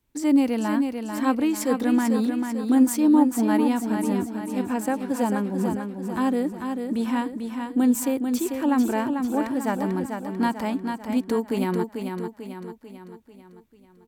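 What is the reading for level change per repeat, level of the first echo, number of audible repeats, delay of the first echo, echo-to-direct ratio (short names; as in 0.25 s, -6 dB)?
-6.0 dB, -6.0 dB, 5, 0.443 s, -5.0 dB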